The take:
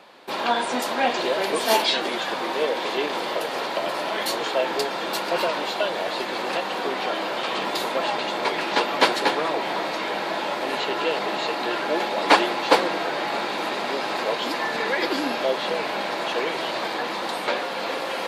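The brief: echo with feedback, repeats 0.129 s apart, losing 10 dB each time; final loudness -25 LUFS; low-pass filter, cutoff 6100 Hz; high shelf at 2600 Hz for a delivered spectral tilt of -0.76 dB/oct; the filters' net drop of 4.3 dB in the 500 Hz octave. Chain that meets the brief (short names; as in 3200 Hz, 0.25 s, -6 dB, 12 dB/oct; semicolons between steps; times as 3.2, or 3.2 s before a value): LPF 6100 Hz; bell 500 Hz -5 dB; high shelf 2600 Hz -7.5 dB; feedback echo 0.129 s, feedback 32%, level -10 dB; gain +2 dB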